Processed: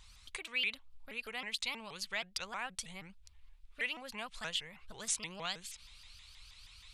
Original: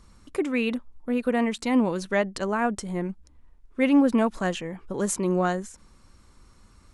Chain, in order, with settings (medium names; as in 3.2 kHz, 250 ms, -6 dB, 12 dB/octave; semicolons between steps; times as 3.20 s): high-order bell 3.2 kHz +8.5 dB 1.2 oct, from 5.22 s +15 dB; compression 1.5:1, threshold -39 dBFS, peak gain reduction 9 dB; amplifier tone stack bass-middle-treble 10-0-10; vibrato with a chosen wave saw up 6.3 Hz, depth 250 cents; trim +1 dB